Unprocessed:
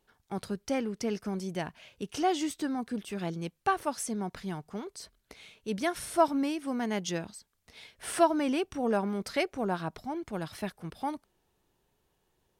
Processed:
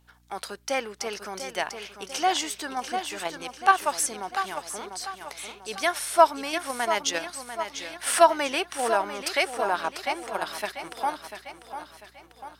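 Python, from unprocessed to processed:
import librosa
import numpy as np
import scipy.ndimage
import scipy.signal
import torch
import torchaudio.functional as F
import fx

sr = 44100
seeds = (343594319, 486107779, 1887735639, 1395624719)

p1 = scipy.signal.sosfilt(scipy.signal.butter(2, 750.0, 'highpass', fs=sr, output='sos'), x)
p2 = fx.echo_feedback(p1, sr, ms=695, feedback_pct=48, wet_db=-9.0)
p3 = fx.level_steps(p2, sr, step_db=13)
p4 = p2 + (p3 * 10.0 ** (0.0 / 20.0))
p5 = fx.add_hum(p4, sr, base_hz=60, snr_db=34)
y = p5 * 10.0 ** (6.0 / 20.0)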